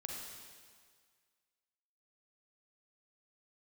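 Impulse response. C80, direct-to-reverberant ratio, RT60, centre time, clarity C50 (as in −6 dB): 2.0 dB, −1.0 dB, 1.8 s, 89 ms, 0.0 dB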